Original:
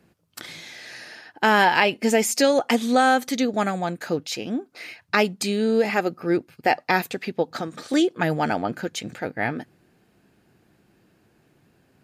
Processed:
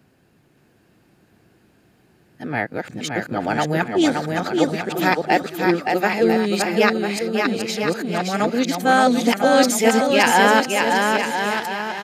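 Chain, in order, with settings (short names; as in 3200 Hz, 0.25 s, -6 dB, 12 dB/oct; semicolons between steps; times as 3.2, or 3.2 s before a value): whole clip reversed; bouncing-ball echo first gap 0.57 s, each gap 0.75×, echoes 5; gain +2 dB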